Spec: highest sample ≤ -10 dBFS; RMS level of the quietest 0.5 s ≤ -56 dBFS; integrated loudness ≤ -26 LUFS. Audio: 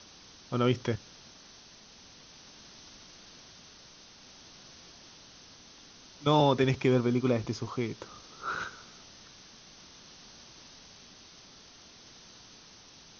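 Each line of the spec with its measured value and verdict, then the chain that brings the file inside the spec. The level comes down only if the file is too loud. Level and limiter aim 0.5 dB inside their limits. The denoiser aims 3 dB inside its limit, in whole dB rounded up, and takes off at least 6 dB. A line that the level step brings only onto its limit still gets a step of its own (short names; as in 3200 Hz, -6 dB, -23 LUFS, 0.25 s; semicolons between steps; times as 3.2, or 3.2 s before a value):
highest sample -11.0 dBFS: OK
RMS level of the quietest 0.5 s -54 dBFS: fail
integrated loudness -29.5 LUFS: OK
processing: denoiser 6 dB, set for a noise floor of -54 dBFS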